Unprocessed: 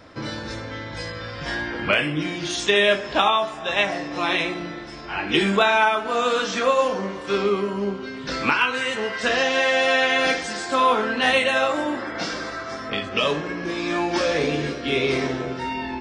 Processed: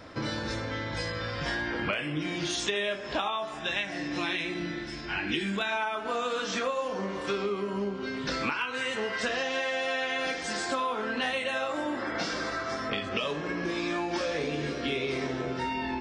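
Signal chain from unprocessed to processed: time-frequency box 3.58–5.72 s, 370–1400 Hz -7 dB; compression 6:1, threshold -28 dBFS, peak gain reduction 13.5 dB

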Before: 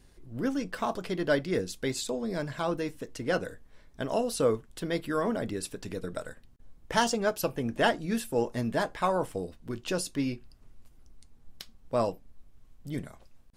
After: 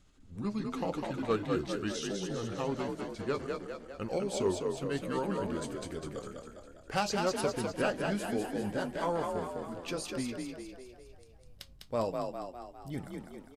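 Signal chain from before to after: pitch bend over the whole clip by -5 st ending unshifted; one-sided clip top -18 dBFS; frequency-shifting echo 202 ms, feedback 54%, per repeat +42 Hz, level -4 dB; trim -4 dB

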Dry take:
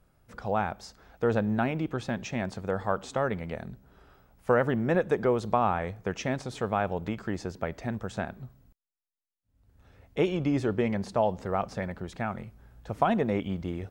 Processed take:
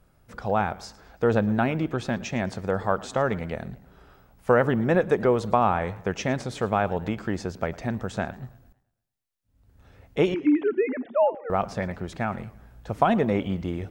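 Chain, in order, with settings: 10.34–11.50 s: formants replaced by sine waves; modulated delay 111 ms, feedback 43%, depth 178 cents, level -20 dB; trim +4 dB

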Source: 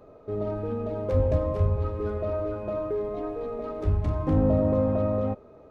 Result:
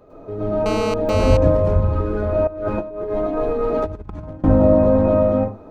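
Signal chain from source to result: reverberation RT60 0.30 s, pre-delay 97 ms, DRR -7 dB; 0.66–1.37 s: mobile phone buzz -25 dBFS; 2.47–4.44 s: compressor with a negative ratio -25 dBFS, ratio -0.5; trim +1.5 dB

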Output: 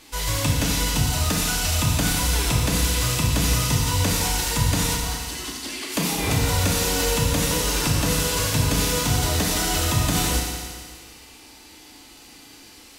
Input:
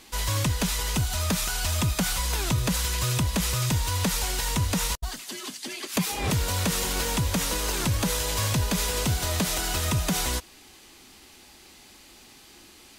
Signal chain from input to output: FDN reverb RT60 1.9 s, low-frequency decay 0.85×, high-frequency decay 1×, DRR -2.5 dB

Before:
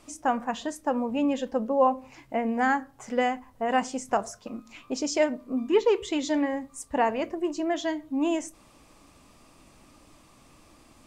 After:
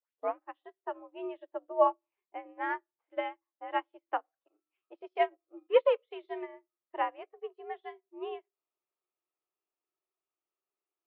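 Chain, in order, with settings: tape start-up on the opening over 0.36 s; mistuned SSB +79 Hz 260–3300 Hz; upward expansion 2.5:1, over -43 dBFS

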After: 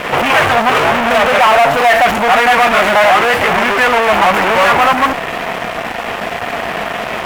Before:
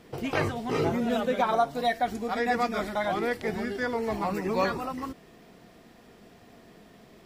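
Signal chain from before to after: fuzz box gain 50 dB, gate -55 dBFS; high-order bell 1.3 kHz +13 dB 2.8 oct; trim -6 dB

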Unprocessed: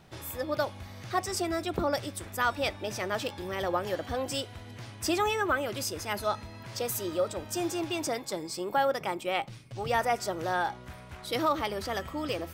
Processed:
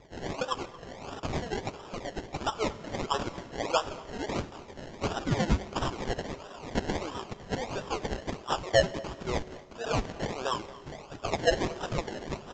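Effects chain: sawtooth pitch modulation -11 st, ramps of 411 ms; high-pass 180 Hz; peaking EQ 770 Hz -3 dB; in parallel at +1 dB: compression, threshold -35 dBFS, peak gain reduction 11 dB; on the sum: hard clipper -21 dBFS, distortion -19 dB; LFO high-pass sine 1.8 Hz 640–3500 Hz; decimation with a swept rate 29×, swing 60% 1.5 Hz; speakerphone echo 230 ms, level -18 dB; on a send at -16 dB: reverberation RT60 2.0 s, pre-delay 3 ms; on the sum: resampled via 16 kHz

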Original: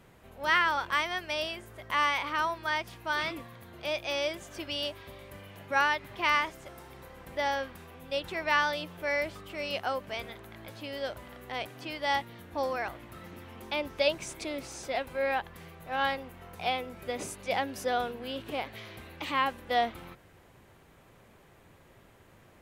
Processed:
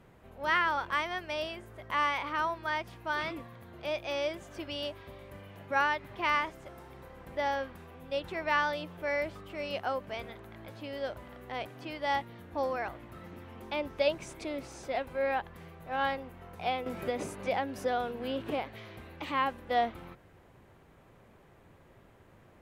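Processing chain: treble shelf 2.4 kHz -8.5 dB; 16.86–18.59 s: three bands compressed up and down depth 70%

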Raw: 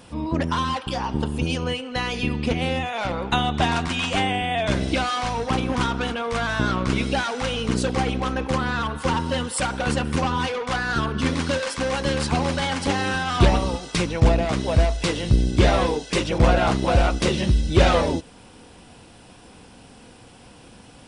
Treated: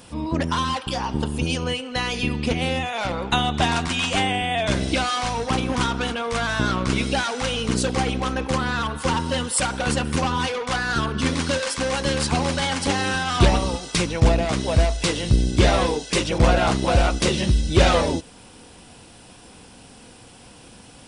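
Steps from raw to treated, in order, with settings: treble shelf 4.5 kHz +7 dB

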